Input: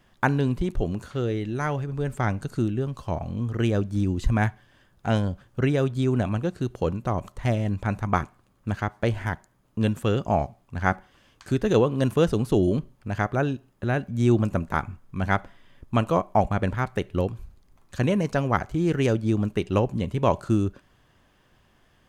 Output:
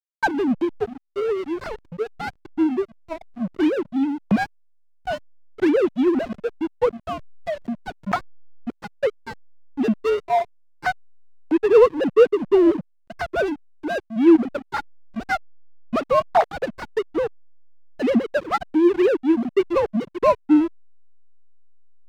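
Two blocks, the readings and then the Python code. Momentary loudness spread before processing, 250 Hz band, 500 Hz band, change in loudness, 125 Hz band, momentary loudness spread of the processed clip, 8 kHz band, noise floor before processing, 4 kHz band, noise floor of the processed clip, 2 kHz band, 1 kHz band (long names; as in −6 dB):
8 LU, +4.5 dB, +6.5 dB, +4.0 dB, −15.5 dB, 15 LU, can't be measured, −62 dBFS, +1.0 dB, −59 dBFS, +2.0 dB, +3.0 dB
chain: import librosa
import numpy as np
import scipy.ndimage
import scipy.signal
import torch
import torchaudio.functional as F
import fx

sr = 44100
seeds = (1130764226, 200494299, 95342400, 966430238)

y = fx.sine_speech(x, sr)
y = fx.backlash(y, sr, play_db=-23.0)
y = y * librosa.db_to_amplitude(4.5)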